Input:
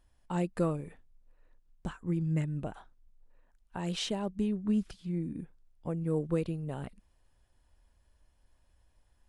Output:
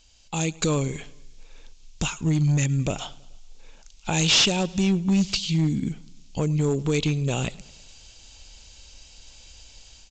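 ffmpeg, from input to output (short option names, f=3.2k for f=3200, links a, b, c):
-filter_complex "[0:a]asplit=2[a][b];[b]acompressor=threshold=-46dB:ratio=4,volume=0dB[c];[a][c]amix=inputs=2:normalize=0,alimiter=limit=-23.5dB:level=0:latency=1:release=119,dynaudnorm=f=270:g=3:m=10dB,aexciter=amount=8.9:drive=3.6:freq=2.6k,asoftclip=type=hard:threshold=-16dB,asplit=2[d][e];[e]aecho=0:1:98|196|294|392:0.0708|0.0404|0.023|0.0131[f];[d][f]amix=inputs=2:normalize=0,asetrate=40517,aresample=44100,aresample=16000,aresample=44100"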